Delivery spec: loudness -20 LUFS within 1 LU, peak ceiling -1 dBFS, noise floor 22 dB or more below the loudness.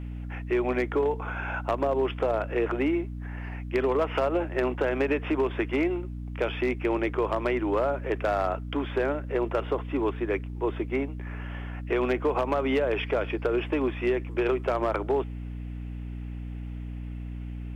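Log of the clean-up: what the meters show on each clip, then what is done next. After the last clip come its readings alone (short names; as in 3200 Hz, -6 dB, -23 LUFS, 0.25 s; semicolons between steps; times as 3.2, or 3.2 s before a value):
clipped 0.7%; flat tops at -18.0 dBFS; hum 60 Hz; harmonics up to 300 Hz; hum level -33 dBFS; loudness -28.5 LUFS; peak -18.0 dBFS; loudness target -20.0 LUFS
-> clip repair -18 dBFS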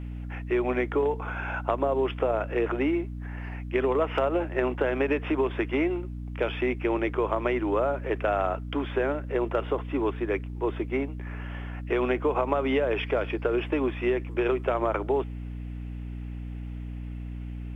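clipped 0.0%; hum 60 Hz; harmonics up to 300 Hz; hum level -33 dBFS
-> notches 60/120/180/240/300 Hz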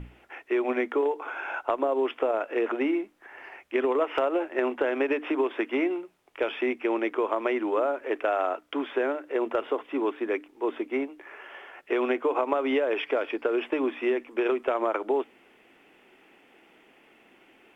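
hum none; loudness -28.0 LUFS; peak -10.0 dBFS; loudness target -20.0 LUFS
-> gain +8 dB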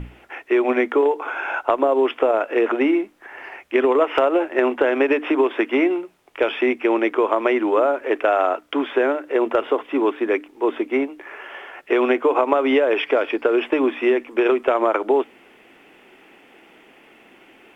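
loudness -20.0 LUFS; peak -2.0 dBFS; noise floor -51 dBFS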